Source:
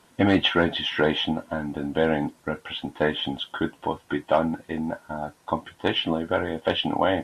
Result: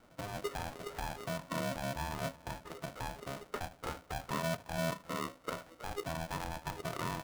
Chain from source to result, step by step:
stylus tracing distortion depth 0.047 ms
Butterworth low-pass 1,100 Hz 48 dB per octave
low-shelf EQ 170 Hz +8 dB
repeating echo 77 ms, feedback 23%, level −22 dB
downward compressor 4 to 1, threshold −32 dBFS, peak gain reduction 16.5 dB
on a send: single-tap delay 345 ms −22 dB
on the sum: brickwall limiter −27.5 dBFS, peak gain reduction 10 dB
mains-hum notches 50/100/150/200 Hz
noise reduction from a noise print of the clip's start 6 dB
ring modulator with a square carrier 410 Hz
level +2 dB

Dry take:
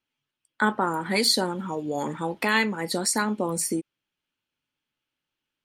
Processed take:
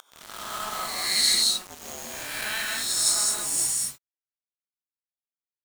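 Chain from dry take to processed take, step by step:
peak hold with a rise ahead of every peak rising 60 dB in 1.24 s
Bessel low-pass filter 9,700 Hz, order 6
first difference
upward compression, threshold −33 dBFS
frequency shifter −210 Hz
bit-depth reduction 6 bits, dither none
reverb whose tail is shaped and stops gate 240 ms rising, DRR −0.5 dB
level that may rise only so fast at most 200 dB per second

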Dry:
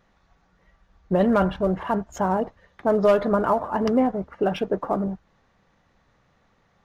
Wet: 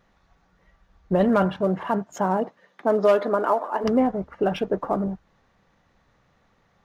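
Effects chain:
0:01.28–0:03.83: high-pass filter 82 Hz → 340 Hz 24 dB per octave

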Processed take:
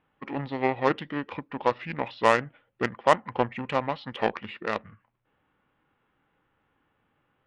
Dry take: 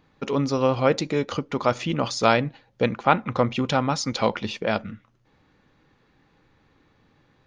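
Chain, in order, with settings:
low-pass filter 3,800 Hz 24 dB per octave
harmonic generator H 7 −22 dB, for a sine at −3.5 dBFS
low-shelf EQ 480 Hz −9.5 dB
formants moved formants −4 semitones
level +1.5 dB

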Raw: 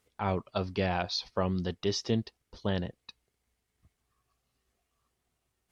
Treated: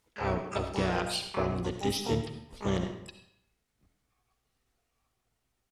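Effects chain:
dynamic equaliser 1,600 Hz, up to −5 dB, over −55 dBFS, Q 6.7
pitch-shifted copies added −7 semitones −4 dB, +12 semitones −6 dB
comb and all-pass reverb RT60 0.76 s, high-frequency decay 0.85×, pre-delay 25 ms, DRR 6.5 dB
level −2.5 dB

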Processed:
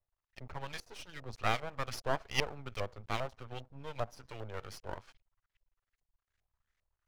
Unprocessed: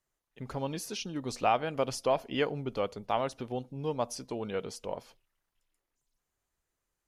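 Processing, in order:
auto-filter low-pass saw up 2.5 Hz 630–2,200 Hz
drawn EQ curve 110 Hz 0 dB, 210 Hz −30 dB, 380 Hz −16 dB, 980 Hz −11 dB, 5,800 Hz +13 dB
half-wave rectification
level +6.5 dB

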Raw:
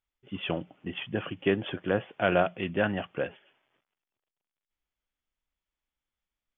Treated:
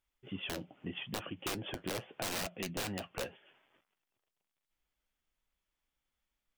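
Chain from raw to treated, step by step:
wrap-around overflow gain 22 dB
downward compressor 2 to 1, threshold −46 dBFS, peak gain reduction 11 dB
flanger 0.8 Hz, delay 3.1 ms, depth 7.1 ms, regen −62%
dynamic equaliser 1,500 Hz, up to −3 dB, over −58 dBFS, Q 1
level +7 dB

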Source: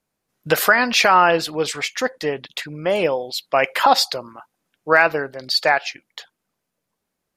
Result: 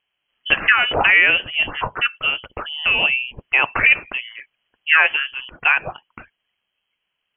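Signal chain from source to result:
in parallel at −3 dB: downward compressor, threshold −21 dBFS, peak gain reduction 11.5 dB
on the sum: voice inversion scrambler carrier 3,200 Hz
level −1.5 dB

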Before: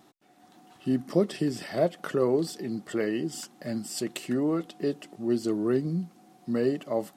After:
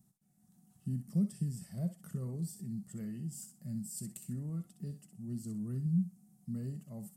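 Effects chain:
drawn EQ curve 200 Hz 0 dB, 300 Hz −27 dB, 3,700 Hz −27 dB, 8,600 Hz −4 dB
on a send: feedback echo with a high-pass in the loop 63 ms, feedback 23%, high-pass 620 Hz, level −8 dB

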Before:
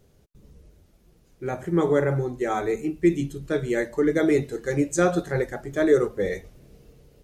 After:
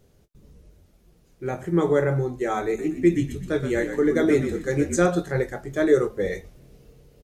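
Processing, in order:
double-tracking delay 23 ms −12 dB
0:02.66–0:05.06: echo with shifted repeats 123 ms, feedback 37%, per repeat −53 Hz, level −8 dB

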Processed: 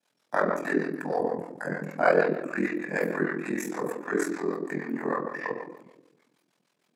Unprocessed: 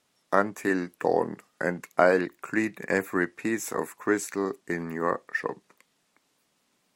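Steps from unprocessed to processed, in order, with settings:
0:00.79–0:01.80: graphic EQ with 15 bands 400 Hz −5 dB, 2,500 Hz −6 dB, 10,000 Hz +6 dB
convolution reverb RT60 0.95 s, pre-delay 18 ms, DRR −3 dB
two-band tremolo in antiphase 6.5 Hz, depth 70%, crossover 520 Hz
high-pass filter 190 Hz 24 dB per octave
ring modulation 21 Hz
level −2 dB

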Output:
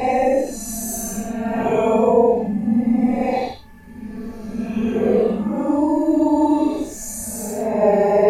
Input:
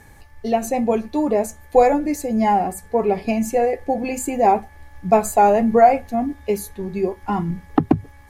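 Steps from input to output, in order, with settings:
reversed piece by piece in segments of 190 ms
extreme stretch with random phases 9×, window 0.05 s, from 0:00.57
level +2 dB

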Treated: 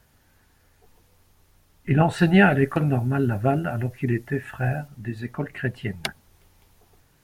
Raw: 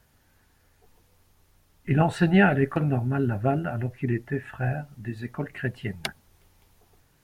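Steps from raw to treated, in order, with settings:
0:02.18–0:04.88: high-shelf EQ 4,800 Hz +7.5 dB
level +2.5 dB

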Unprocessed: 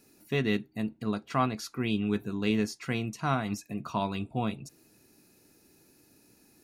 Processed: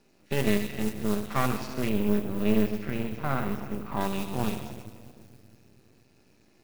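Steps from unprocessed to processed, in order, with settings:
spectrum averaged block by block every 50 ms
high-frequency loss of the air 120 metres
delay with a high-pass on its return 70 ms, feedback 67%, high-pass 2,000 Hz, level −5.5 dB
rectangular room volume 3,000 cubic metres, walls mixed, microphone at 1.2 metres
noise that follows the level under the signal 16 dB
half-wave rectification
0:01.89–0:04.01: parametric band 6,800 Hz −11.5 dB 2.3 octaves
level +4.5 dB

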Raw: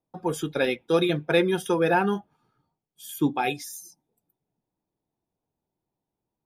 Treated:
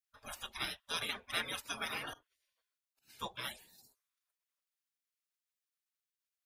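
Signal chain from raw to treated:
0:02.13–0:03.08: volume swells 169 ms
gate on every frequency bin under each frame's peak −25 dB weak
level +2.5 dB

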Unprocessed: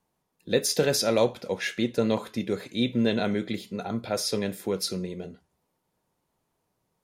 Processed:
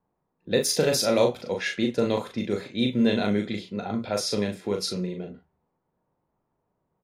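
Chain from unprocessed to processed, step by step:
low-pass that shuts in the quiet parts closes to 1,300 Hz, open at −22.5 dBFS
double-tracking delay 39 ms −4.5 dB

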